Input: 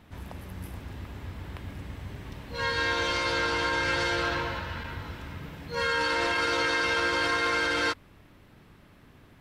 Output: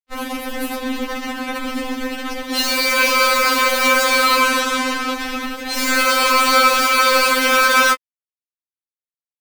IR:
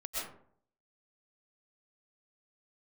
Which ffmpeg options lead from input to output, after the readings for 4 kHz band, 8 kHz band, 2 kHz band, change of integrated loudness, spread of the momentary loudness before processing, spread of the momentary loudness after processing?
+12.5 dB, +19.5 dB, +11.0 dB, +11.0 dB, 16 LU, 13 LU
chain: -af "acrusher=bits=5:mix=0:aa=0.5,apsyclip=27dB,afftfilt=real='re*3.46*eq(mod(b,12),0)':imag='im*3.46*eq(mod(b,12),0)':win_size=2048:overlap=0.75,volume=-6dB"

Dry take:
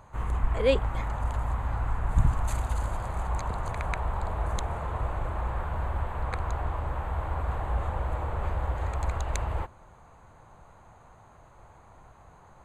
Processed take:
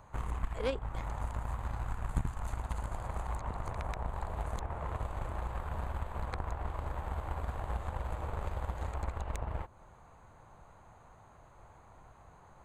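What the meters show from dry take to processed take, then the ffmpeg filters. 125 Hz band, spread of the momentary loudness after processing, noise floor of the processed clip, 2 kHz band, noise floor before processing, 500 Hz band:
-8.0 dB, 21 LU, -58 dBFS, -8.0 dB, -54 dBFS, -9.0 dB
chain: -filter_complex "[0:a]acrossover=split=1300|3700[a][b][c];[a]acompressor=threshold=-34dB:ratio=4[d];[b]acompressor=threshold=-56dB:ratio=4[e];[c]acompressor=threshold=-59dB:ratio=4[f];[d][e][f]amix=inputs=3:normalize=0,aeval=exprs='0.0668*(cos(1*acos(clip(val(0)/0.0668,-1,1)))-cos(1*PI/2))+0.015*(cos(3*acos(clip(val(0)/0.0668,-1,1)))-cos(3*PI/2))':c=same,volume=6dB"

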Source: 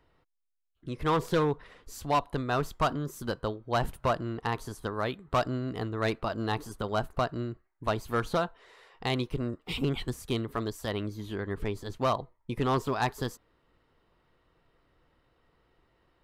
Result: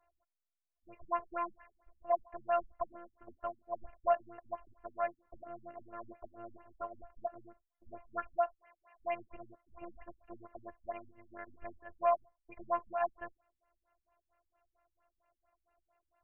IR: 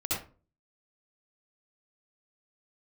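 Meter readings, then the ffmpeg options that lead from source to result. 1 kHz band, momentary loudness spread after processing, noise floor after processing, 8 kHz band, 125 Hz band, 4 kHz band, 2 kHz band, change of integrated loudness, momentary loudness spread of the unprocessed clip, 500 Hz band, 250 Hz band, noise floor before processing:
-5.5 dB, 20 LU, under -85 dBFS, under -30 dB, -32.0 dB, under -30 dB, -13.0 dB, -7.0 dB, 8 LU, -6.5 dB, -21.5 dB, -71 dBFS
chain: -af "afftfilt=real='hypot(re,im)*cos(PI*b)':imag='0':win_size=512:overlap=0.75,lowshelf=f=460:t=q:w=3:g=-9,afftfilt=real='re*lt(b*sr/1024,250*pow(3100/250,0.5+0.5*sin(2*PI*4.4*pts/sr)))':imag='im*lt(b*sr/1024,250*pow(3100/250,0.5+0.5*sin(2*PI*4.4*pts/sr)))':win_size=1024:overlap=0.75,volume=-2.5dB"

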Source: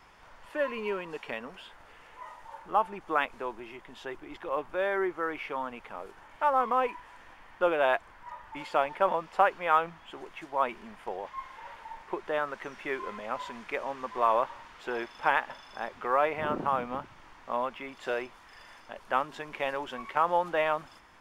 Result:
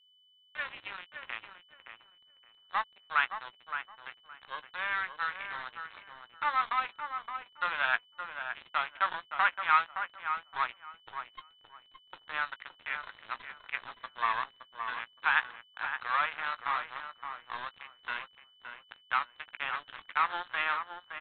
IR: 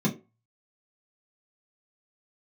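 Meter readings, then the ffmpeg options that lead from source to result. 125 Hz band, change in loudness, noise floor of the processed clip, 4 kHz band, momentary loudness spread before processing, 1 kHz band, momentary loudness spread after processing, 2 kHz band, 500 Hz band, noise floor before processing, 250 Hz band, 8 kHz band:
under -10 dB, -3.0 dB, -63 dBFS, +3.0 dB, 18 LU, -3.5 dB, 18 LU, +3.0 dB, -20.0 dB, -54 dBFS, under -20 dB, n/a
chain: -filter_complex "[0:a]aeval=exprs='if(lt(val(0),0),0.447*val(0),val(0))':c=same,highpass=f=1.1k:w=0.5412,highpass=f=1.1k:w=1.3066,equalizer=f=1.5k:t=o:w=0.49:g=4.5,acontrast=41,aresample=8000,aeval=exprs='sgn(val(0))*max(abs(val(0))-0.0158,0)':c=same,aresample=44100,aeval=exprs='val(0)+0.000794*sin(2*PI*3000*n/s)':c=same,asplit=2[a][b];[b]adelay=17,volume=-13.5dB[c];[a][c]amix=inputs=2:normalize=0,asplit=2[d][e];[e]adelay=568,lowpass=f=2k:p=1,volume=-7dB,asplit=2[f][g];[g]adelay=568,lowpass=f=2k:p=1,volume=0.22,asplit=2[h][i];[i]adelay=568,lowpass=f=2k:p=1,volume=0.22[j];[f][h][j]amix=inputs=3:normalize=0[k];[d][k]amix=inputs=2:normalize=0,volume=-2dB"

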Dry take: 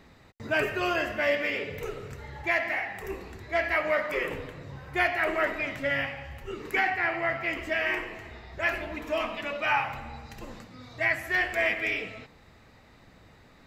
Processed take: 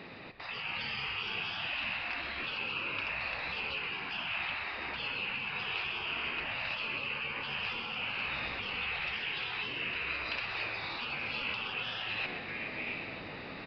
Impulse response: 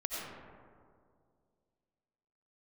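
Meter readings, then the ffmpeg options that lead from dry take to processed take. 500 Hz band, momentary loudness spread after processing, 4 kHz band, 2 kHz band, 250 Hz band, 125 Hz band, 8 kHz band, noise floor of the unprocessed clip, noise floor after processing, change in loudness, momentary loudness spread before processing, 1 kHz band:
-16.5 dB, 3 LU, +4.0 dB, -6.0 dB, -10.5 dB, -7.0 dB, n/a, -56 dBFS, -44 dBFS, -6.5 dB, 16 LU, -8.5 dB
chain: -filter_complex "[0:a]acompressor=threshold=-35dB:ratio=5,highpass=200,lowshelf=f=400:g=4.5,asplit=2[a][b];[b]aecho=0:1:945:0.141[c];[a][c]amix=inputs=2:normalize=0,aresample=11025,aresample=44100,afftfilt=real='re*lt(hypot(re,im),0.0126)':imag='im*lt(hypot(re,im),0.0126)':win_size=1024:overlap=0.75,equalizer=f=2.6k:w=4.2:g=11,asplit=2[d][e];[e]asplit=6[f][g][h][i][j][k];[f]adelay=128,afreqshift=-75,volume=-11dB[l];[g]adelay=256,afreqshift=-150,volume=-16.7dB[m];[h]adelay=384,afreqshift=-225,volume=-22.4dB[n];[i]adelay=512,afreqshift=-300,volume=-28dB[o];[j]adelay=640,afreqshift=-375,volume=-33.7dB[p];[k]adelay=768,afreqshift=-450,volume=-39.4dB[q];[l][m][n][o][p][q]amix=inputs=6:normalize=0[r];[d][r]amix=inputs=2:normalize=0,dynaudnorm=f=130:g=9:m=4dB,volume=7dB"

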